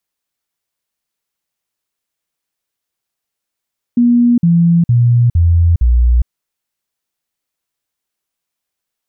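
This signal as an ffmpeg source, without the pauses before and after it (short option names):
-f lavfi -i "aevalsrc='0.473*clip(min(mod(t,0.46),0.41-mod(t,0.46))/0.005,0,1)*sin(2*PI*240*pow(2,-floor(t/0.46)/2)*mod(t,0.46))':d=2.3:s=44100"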